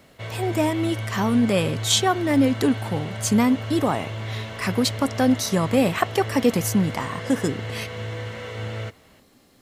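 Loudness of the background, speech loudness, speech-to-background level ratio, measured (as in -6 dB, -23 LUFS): -32.0 LUFS, -22.5 LUFS, 9.5 dB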